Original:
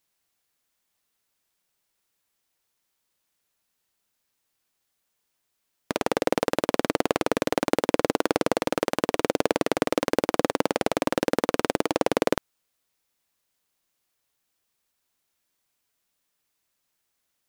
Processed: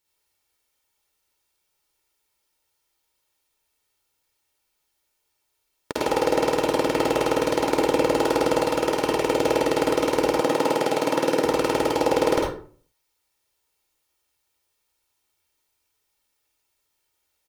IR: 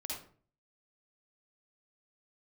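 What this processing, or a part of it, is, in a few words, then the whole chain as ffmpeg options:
microphone above a desk: -filter_complex "[0:a]aecho=1:1:2.2:0.51[a];[1:a]atrim=start_sample=2205[b];[a][b]afir=irnorm=-1:irlink=0,asettb=1/sr,asplit=3[c][d][e];[c]atrim=end=10.414[f];[d]atrim=start=10.41:end=11.45,asetpts=PTS-STARTPTS,afade=t=in:d=0.004:c=qsin,afade=t=out:st=1.036:d=0.004:c=qsin,highpass=f=120:w=0.5412,highpass=f=120:w=1.3066[g];[e]atrim=start=11.446[h];[f][g]acrossfade=d=0.004:c1=hsin:c2=qsin[i];[i][h]acrossfade=d=0.004:c1=qsin:c2=hsin,volume=2.5dB"

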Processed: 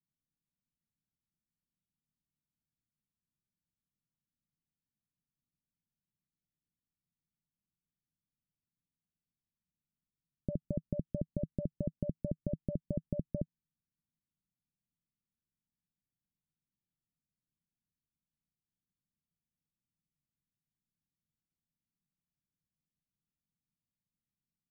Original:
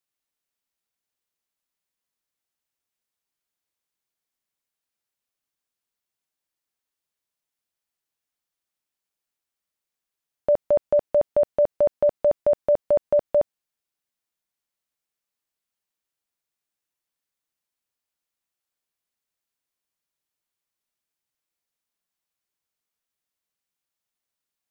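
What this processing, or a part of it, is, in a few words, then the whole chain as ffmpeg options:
the neighbour's flat through the wall: -af "lowpass=f=250:w=0.5412,lowpass=f=250:w=1.3066,equalizer=f=160:t=o:w=0.65:g=7.5,volume=5.5dB"

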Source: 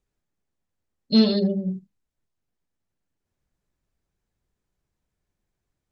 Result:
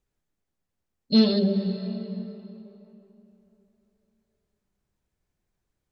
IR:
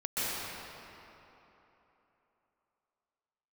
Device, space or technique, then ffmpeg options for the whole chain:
ducked reverb: -filter_complex "[0:a]asplit=3[a][b][c];[1:a]atrim=start_sample=2205[d];[b][d]afir=irnorm=-1:irlink=0[e];[c]apad=whole_len=261031[f];[e][f]sidechaincompress=threshold=-23dB:ratio=8:attack=16:release=356,volume=-15dB[g];[a][g]amix=inputs=2:normalize=0,volume=-1.5dB"

